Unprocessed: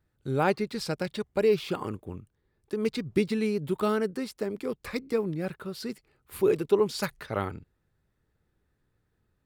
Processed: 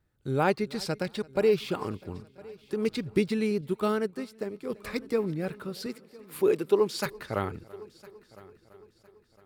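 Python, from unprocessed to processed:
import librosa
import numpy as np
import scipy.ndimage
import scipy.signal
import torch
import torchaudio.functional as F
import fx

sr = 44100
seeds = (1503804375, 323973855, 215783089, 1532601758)

y = fx.highpass(x, sr, hz=190.0, slope=12, at=(5.86, 7.06))
y = fx.echo_heads(y, sr, ms=336, heads='first and third', feedback_pct=48, wet_db=-23)
y = fx.upward_expand(y, sr, threshold_db=-42.0, expansion=1.5, at=(3.61, 4.7))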